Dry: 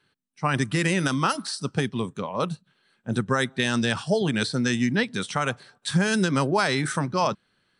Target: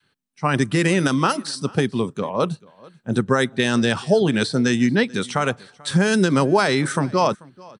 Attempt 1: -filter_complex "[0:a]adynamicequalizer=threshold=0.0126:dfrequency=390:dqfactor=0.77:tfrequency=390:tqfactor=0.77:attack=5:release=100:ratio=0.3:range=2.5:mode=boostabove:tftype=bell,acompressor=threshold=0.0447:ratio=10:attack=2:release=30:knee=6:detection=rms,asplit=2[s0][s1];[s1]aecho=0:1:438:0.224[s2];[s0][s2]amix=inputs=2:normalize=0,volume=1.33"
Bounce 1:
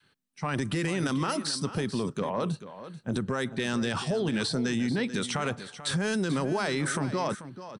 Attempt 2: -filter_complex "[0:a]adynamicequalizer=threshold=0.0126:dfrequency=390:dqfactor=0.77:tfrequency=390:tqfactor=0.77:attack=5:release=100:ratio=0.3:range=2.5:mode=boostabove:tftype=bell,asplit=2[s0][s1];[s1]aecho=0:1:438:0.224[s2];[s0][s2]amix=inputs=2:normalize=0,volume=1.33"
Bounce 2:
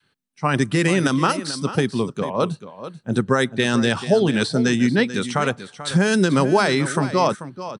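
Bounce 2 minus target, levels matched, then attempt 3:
echo-to-direct +11 dB
-filter_complex "[0:a]adynamicequalizer=threshold=0.0126:dfrequency=390:dqfactor=0.77:tfrequency=390:tqfactor=0.77:attack=5:release=100:ratio=0.3:range=2.5:mode=boostabove:tftype=bell,asplit=2[s0][s1];[s1]aecho=0:1:438:0.0631[s2];[s0][s2]amix=inputs=2:normalize=0,volume=1.33"

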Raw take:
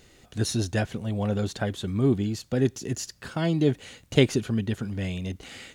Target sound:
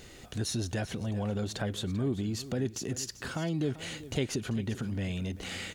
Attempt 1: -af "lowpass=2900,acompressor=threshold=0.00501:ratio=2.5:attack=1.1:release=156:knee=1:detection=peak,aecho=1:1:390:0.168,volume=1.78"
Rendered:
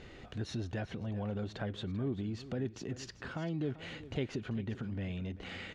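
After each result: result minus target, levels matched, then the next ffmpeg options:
compression: peak gain reduction +4.5 dB; 4 kHz band -3.5 dB
-af "lowpass=2900,acompressor=threshold=0.0126:ratio=2.5:attack=1.1:release=156:knee=1:detection=peak,aecho=1:1:390:0.168,volume=1.78"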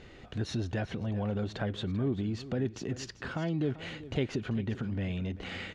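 4 kHz band -4.0 dB
-af "acompressor=threshold=0.0126:ratio=2.5:attack=1.1:release=156:knee=1:detection=peak,aecho=1:1:390:0.168,volume=1.78"

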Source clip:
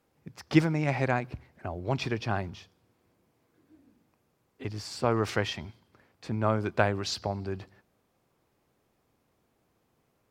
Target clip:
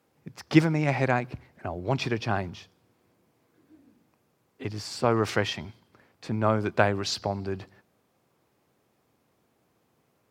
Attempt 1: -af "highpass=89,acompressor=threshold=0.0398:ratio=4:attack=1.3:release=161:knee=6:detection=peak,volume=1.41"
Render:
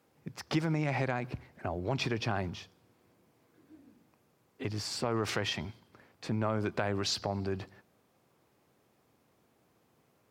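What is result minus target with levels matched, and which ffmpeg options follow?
compression: peak gain reduction +14.5 dB
-af "highpass=89,volume=1.41"

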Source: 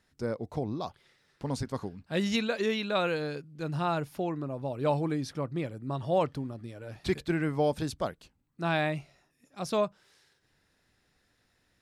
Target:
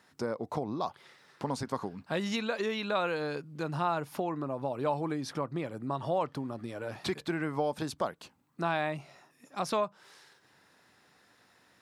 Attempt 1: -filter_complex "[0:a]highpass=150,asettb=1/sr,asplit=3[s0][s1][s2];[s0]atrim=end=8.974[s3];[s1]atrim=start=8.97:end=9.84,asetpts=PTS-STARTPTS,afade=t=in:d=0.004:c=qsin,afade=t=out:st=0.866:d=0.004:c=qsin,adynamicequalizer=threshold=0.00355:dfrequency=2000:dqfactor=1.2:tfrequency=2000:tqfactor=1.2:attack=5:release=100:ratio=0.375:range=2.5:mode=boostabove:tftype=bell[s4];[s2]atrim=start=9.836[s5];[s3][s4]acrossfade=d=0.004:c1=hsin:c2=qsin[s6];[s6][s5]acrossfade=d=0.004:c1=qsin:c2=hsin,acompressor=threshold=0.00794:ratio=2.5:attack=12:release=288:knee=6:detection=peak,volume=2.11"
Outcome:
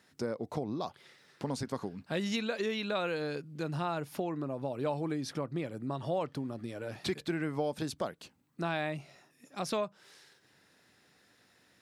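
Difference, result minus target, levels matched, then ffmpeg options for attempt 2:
1 kHz band -3.5 dB
-filter_complex "[0:a]highpass=150,asettb=1/sr,asplit=3[s0][s1][s2];[s0]atrim=end=8.974[s3];[s1]atrim=start=8.97:end=9.84,asetpts=PTS-STARTPTS,afade=t=in:d=0.004:c=qsin,afade=t=out:st=0.866:d=0.004:c=qsin,adynamicequalizer=threshold=0.00355:dfrequency=2000:dqfactor=1.2:tfrequency=2000:tqfactor=1.2:attack=5:release=100:ratio=0.375:range=2.5:mode=boostabove:tftype=bell[s4];[s2]atrim=start=9.836[s5];[s3][s4]acrossfade=d=0.004:c1=hsin:c2=qsin[s6];[s6][s5]acrossfade=d=0.004:c1=qsin:c2=hsin,acompressor=threshold=0.00794:ratio=2.5:attack=12:release=288:knee=6:detection=peak,equalizer=f=1000:t=o:w=1.1:g=7,volume=2.11"

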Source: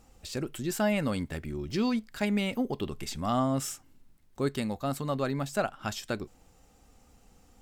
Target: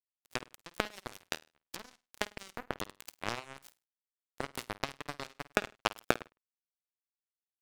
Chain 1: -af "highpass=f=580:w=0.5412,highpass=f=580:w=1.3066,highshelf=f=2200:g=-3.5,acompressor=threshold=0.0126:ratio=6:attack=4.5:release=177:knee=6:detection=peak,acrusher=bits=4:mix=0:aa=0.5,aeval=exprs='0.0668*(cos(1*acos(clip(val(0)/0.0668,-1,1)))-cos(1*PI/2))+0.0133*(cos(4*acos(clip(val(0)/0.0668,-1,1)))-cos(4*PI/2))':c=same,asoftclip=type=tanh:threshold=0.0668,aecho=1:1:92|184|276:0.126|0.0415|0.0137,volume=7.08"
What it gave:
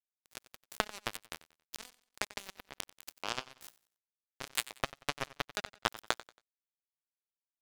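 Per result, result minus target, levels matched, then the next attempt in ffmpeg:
echo 41 ms late; saturation: distortion +19 dB; 250 Hz band -6.0 dB
-af "highpass=f=580:w=0.5412,highpass=f=580:w=1.3066,highshelf=f=2200:g=-3.5,acompressor=threshold=0.0126:ratio=6:attack=4.5:release=177:knee=6:detection=peak,acrusher=bits=4:mix=0:aa=0.5,aeval=exprs='0.0668*(cos(1*acos(clip(val(0)/0.0668,-1,1)))-cos(1*PI/2))+0.0133*(cos(4*acos(clip(val(0)/0.0668,-1,1)))-cos(4*PI/2))':c=same,asoftclip=type=tanh:threshold=0.0668,aecho=1:1:51|102|153:0.126|0.0415|0.0137,volume=7.08"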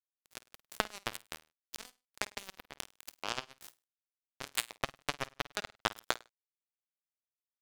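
saturation: distortion +19 dB; 250 Hz band -6.0 dB
-af "highpass=f=580:w=0.5412,highpass=f=580:w=1.3066,highshelf=f=2200:g=-3.5,acompressor=threshold=0.0126:ratio=6:attack=4.5:release=177:knee=6:detection=peak,acrusher=bits=4:mix=0:aa=0.5,aeval=exprs='0.0668*(cos(1*acos(clip(val(0)/0.0668,-1,1)))-cos(1*PI/2))+0.0133*(cos(4*acos(clip(val(0)/0.0668,-1,1)))-cos(4*PI/2))':c=same,asoftclip=type=tanh:threshold=0.211,aecho=1:1:51|102|153:0.126|0.0415|0.0137,volume=7.08"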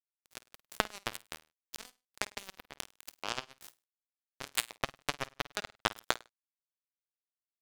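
250 Hz band -6.0 dB
-af "highpass=f=240:w=0.5412,highpass=f=240:w=1.3066,highshelf=f=2200:g=-3.5,acompressor=threshold=0.0126:ratio=6:attack=4.5:release=177:knee=6:detection=peak,acrusher=bits=4:mix=0:aa=0.5,aeval=exprs='0.0668*(cos(1*acos(clip(val(0)/0.0668,-1,1)))-cos(1*PI/2))+0.0133*(cos(4*acos(clip(val(0)/0.0668,-1,1)))-cos(4*PI/2))':c=same,asoftclip=type=tanh:threshold=0.211,aecho=1:1:51|102|153:0.126|0.0415|0.0137,volume=7.08"

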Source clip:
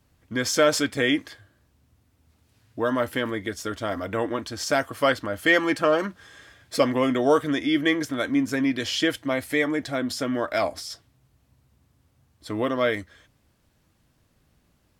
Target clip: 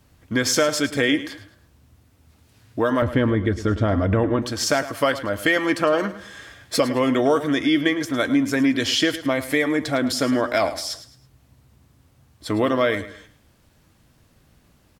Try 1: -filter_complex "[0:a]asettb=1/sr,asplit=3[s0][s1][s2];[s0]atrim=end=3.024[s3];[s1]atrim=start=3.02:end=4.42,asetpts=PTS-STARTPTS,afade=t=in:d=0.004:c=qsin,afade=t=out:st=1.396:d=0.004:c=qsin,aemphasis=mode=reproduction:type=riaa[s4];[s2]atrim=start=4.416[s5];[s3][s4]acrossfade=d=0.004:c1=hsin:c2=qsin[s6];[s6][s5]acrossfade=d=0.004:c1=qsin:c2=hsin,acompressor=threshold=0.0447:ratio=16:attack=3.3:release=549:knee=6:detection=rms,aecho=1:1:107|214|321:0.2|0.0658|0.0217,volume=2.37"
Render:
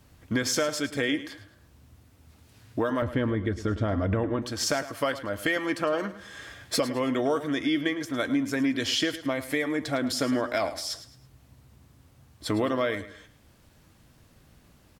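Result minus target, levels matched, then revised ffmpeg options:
compression: peak gain reduction +7.5 dB
-filter_complex "[0:a]asettb=1/sr,asplit=3[s0][s1][s2];[s0]atrim=end=3.024[s3];[s1]atrim=start=3.02:end=4.42,asetpts=PTS-STARTPTS,afade=t=in:d=0.004:c=qsin,afade=t=out:st=1.396:d=0.004:c=qsin,aemphasis=mode=reproduction:type=riaa[s4];[s2]atrim=start=4.416[s5];[s3][s4]acrossfade=d=0.004:c1=hsin:c2=qsin[s6];[s6][s5]acrossfade=d=0.004:c1=qsin:c2=hsin,acompressor=threshold=0.112:ratio=16:attack=3.3:release=549:knee=6:detection=rms,aecho=1:1:107|214|321:0.2|0.0658|0.0217,volume=2.37"

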